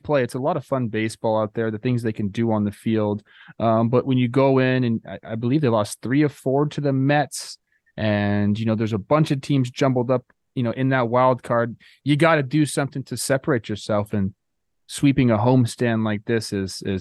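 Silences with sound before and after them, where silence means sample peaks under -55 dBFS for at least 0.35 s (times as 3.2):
14.33–14.89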